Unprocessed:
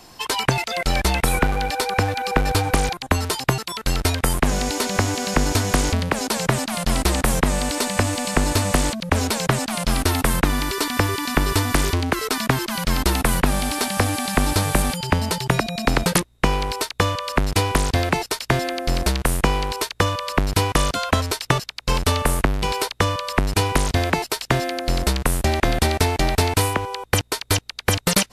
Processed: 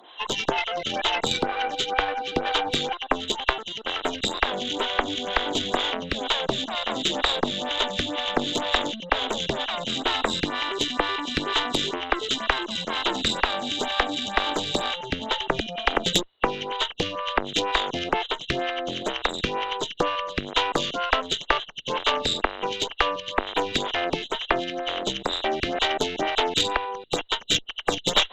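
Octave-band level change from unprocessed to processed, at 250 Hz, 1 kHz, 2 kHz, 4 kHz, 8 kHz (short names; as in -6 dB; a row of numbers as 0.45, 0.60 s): -7.5, -2.5, -3.0, +2.0, -11.0 dB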